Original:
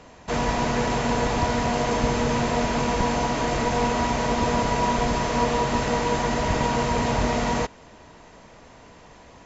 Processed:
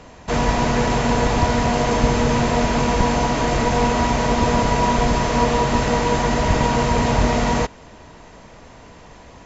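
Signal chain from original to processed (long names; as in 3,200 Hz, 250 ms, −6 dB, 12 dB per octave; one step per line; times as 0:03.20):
low-shelf EQ 130 Hz +4.5 dB
level +4 dB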